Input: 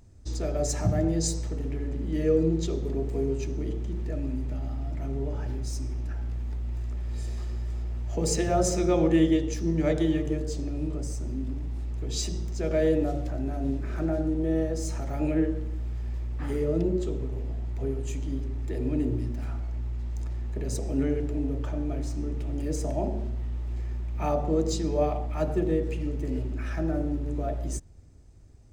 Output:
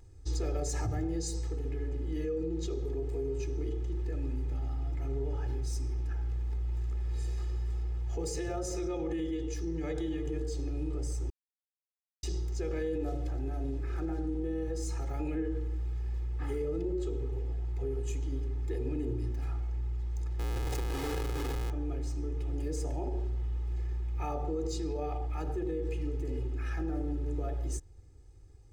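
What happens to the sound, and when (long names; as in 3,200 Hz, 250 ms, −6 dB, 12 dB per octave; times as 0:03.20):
0:11.30–0:12.23: silence
0:20.39–0:21.70: comparator with hysteresis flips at −35.5 dBFS
whole clip: comb filter 2.4 ms, depth 94%; brickwall limiter −19 dBFS; speech leveller 2 s; level −7 dB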